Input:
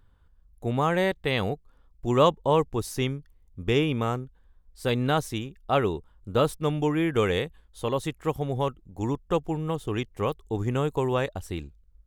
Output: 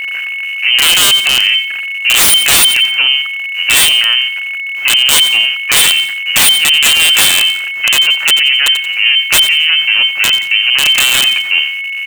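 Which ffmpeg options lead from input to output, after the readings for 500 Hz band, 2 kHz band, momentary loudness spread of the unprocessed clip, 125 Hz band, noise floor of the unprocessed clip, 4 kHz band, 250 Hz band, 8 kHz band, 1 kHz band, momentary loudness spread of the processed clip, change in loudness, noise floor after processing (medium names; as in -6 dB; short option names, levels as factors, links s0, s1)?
-6.5 dB, +26.0 dB, 11 LU, -9.0 dB, -59 dBFS, +32.5 dB, -6.5 dB, +33.5 dB, +5.0 dB, 8 LU, +19.5 dB, -20 dBFS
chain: -filter_complex "[0:a]aeval=exprs='val(0)+0.5*0.0224*sgn(val(0))':c=same,highpass=210,aeval=exprs='0.531*(cos(1*acos(clip(val(0)/0.531,-1,1)))-cos(1*PI/2))+0.237*(cos(4*acos(clip(val(0)/0.531,-1,1)))-cos(4*PI/2))+0.0531*(cos(8*acos(clip(val(0)/0.531,-1,1)))-cos(8*PI/2))':c=same,lowpass=f=2600:t=q:w=0.5098,lowpass=f=2600:t=q:w=0.6013,lowpass=f=2600:t=q:w=0.9,lowpass=f=2600:t=q:w=2.563,afreqshift=-3100,acrossover=split=1300[s0][s1];[s1]crystalizer=i=9.5:c=0[s2];[s0][s2]amix=inputs=2:normalize=0,aeval=exprs='(mod(1.58*val(0)+1,2)-1)/1.58':c=same,acrusher=bits=7:mix=0:aa=0.5,aecho=1:1:89|178|267:0.112|0.0381|0.013,aeval=exprs='val(0)+0.0398*sin(2*PI*2200*n/s)':c=same,alimiter=level_in=3.76:limit=0.891:release=50:level=0:latency=1,volume=0.891"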